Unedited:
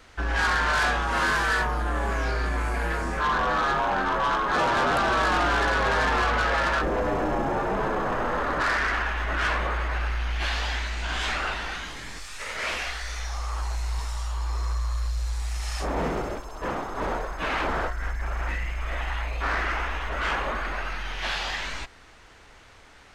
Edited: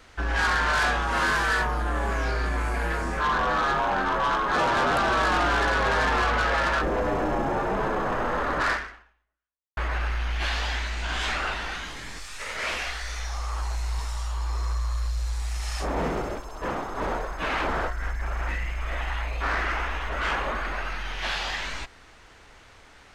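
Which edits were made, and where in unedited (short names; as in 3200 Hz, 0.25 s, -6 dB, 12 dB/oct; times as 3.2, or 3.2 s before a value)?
8.72–9.77 fade out exponential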